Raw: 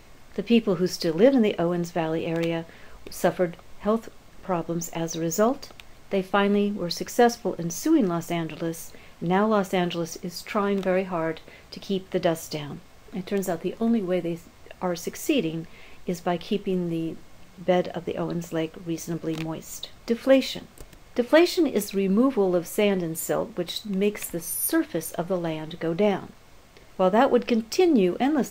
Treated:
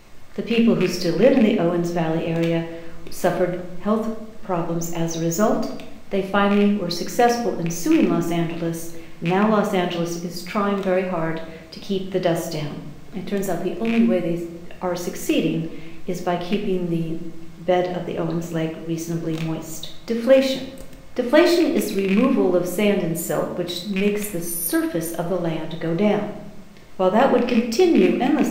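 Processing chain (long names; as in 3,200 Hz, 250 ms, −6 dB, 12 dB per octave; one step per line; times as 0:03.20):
loose part that buzzes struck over −25 dBFS, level −18 dBFS
rectangular room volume 260 cubic metres, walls mixed, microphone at 0.9 metres
level +1 dB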